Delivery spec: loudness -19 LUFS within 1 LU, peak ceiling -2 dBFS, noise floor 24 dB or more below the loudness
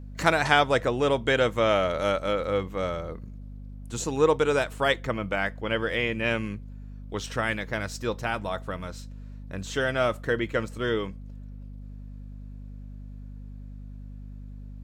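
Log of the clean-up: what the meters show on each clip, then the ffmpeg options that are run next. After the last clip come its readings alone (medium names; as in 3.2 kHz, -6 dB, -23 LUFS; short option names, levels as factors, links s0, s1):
hum 50 Hz; highest harmonic 250 Hz; hum level -38 dBFS; loudness -26.5 LUFS; peak level -5.0 dBFS; loudness target -19.0 LUFS
-> -af "bandreject=f=50:t=h:w=4,bandreject=f=100:t=h:w=4,bandreject=f=150:t=h:w=4,bandreject=f=200:t=h:w=4,bandreject=f=250:t=h:w=4"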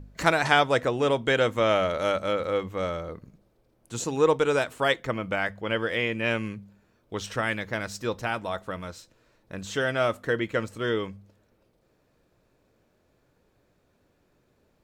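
hum not found; loudness -26.5 LUFS; peak level -4.5 dBFS; loudness target -19.0 LUFS
-> -af "volume=2.37,alimiter=limit=0.794:level=0:latency=1"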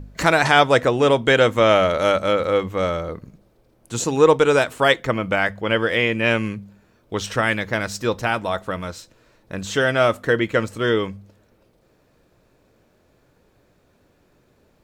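loudness -19.5 LUFS; peak level -2.0 dBFS; noise floor -61 dBFS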